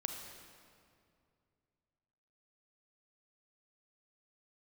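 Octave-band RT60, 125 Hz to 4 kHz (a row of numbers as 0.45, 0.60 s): 3.2, 2.7, 2.5, 2.2, 1.9, 1.7 s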